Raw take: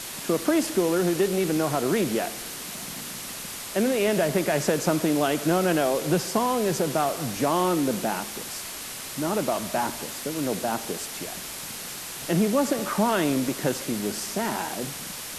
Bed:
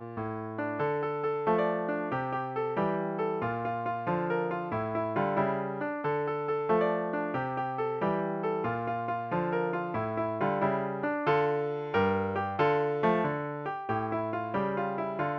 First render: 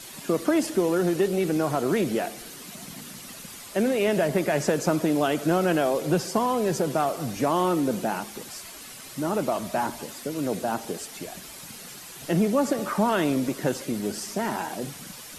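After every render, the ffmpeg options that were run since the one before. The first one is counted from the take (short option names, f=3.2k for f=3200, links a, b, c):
-af "afftdn=nr=9:nf=-37"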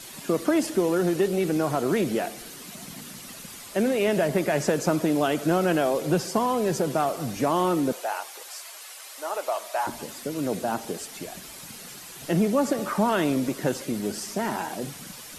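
-filter_complex "[0:a]asettb=1/sr,asplit=3[a][b][c];[a]atrim=end=7.924[d];[b]atrim=start=7.92:end=9.87,asetpts=PTS-STARTPTS,afade=t=in:d=0.004:c=qsin,afade=t=out:st=1.946:d=0.004:c=qsin,highpass=f=540:w=0.5412,highpass=f=540:w=1.3066[e];[c]atrim=start=9.866[f];[d][e]acrossfade=d=0.004:c1=hsin:c2=qsin[g];[g][f]acrossfade=d=0.004:c1=qsin:c2=hsin"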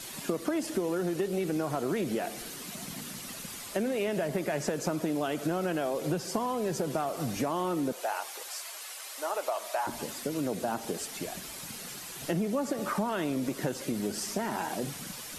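-af "acompressor=threshold=-28dB:ratio=4"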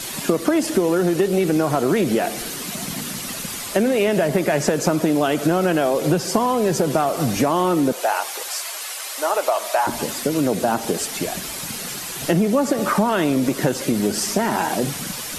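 -af "volume=12dB"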